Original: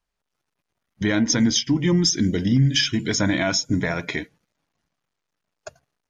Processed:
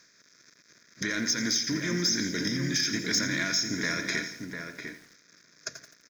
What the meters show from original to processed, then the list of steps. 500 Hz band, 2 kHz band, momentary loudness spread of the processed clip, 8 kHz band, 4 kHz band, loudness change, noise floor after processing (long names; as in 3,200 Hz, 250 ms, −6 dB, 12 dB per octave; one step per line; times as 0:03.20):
−10.0 dB, −2.0 dB, 15 LU, −3.5 dB, −4.5 dB, −7.0 dB, −62 dBFS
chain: compressor on every frequency bin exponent 0.6
high-pass filter 780 Hz 6 dB per octave
high-shelf EQ 7,200 Hz +5.5 dB
downward compressor 2 to 1, threshold −22 dBFS, peak gain reduction 5.5 dB
amplitude tremolo 4.1 Hz, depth 31%
phaser with its sweep stopped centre 3,000 Hz, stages 6
soft clipping −17.5 dBFS, distortion −19 dB
slap from a distant wall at 120 metres, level −6 dB
feedback echo at a low word length 85 ms, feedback 55%, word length 8 bits, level −11 dB